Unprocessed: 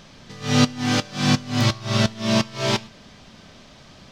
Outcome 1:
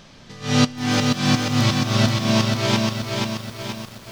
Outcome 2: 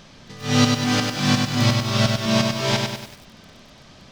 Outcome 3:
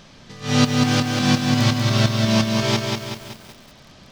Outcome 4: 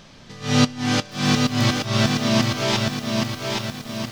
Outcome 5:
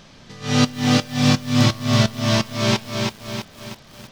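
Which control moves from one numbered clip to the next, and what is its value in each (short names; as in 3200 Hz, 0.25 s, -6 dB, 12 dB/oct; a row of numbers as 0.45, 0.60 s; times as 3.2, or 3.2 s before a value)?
lo-fi delay, time: 480, 98, 190, 821, 327 ms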